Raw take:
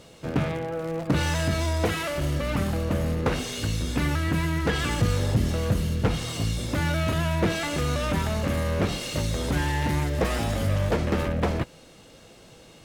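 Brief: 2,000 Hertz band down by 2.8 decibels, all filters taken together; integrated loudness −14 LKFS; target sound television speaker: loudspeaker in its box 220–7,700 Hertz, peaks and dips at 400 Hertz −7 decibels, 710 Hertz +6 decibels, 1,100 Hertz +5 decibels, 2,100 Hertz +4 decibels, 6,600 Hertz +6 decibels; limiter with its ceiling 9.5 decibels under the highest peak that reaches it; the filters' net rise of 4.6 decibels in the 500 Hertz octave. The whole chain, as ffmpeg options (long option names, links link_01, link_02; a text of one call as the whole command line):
ffmpeg -i in.wav -af "equalizer=frequency=500:width_type=o:gain=5.5,equalizer=frequency=2000:width_type=o:gain=-6.5,alimiter=limit=-18dB:level=0:latency=1,highpass=frequency=220:width=0.5412,highpass=frequency=220:width=1.3066,equalizer=frequency=400:width_type=q:width=4:gain=-7,equalizer=frequency=710:width_type=q:width=4:gain=6,equalizer=frequency=1100:width_type=q:width=4:gain=5,equalizer=frequency=2100:width_type=q:width=4:gain=4,equalizer=frequency=6600:width_type=q:width=4:gain=6,lowpass=frequency=7700:width=0.5412,lowpass=frequency=7700:width=1.3066,volume=15.5dB" out.wav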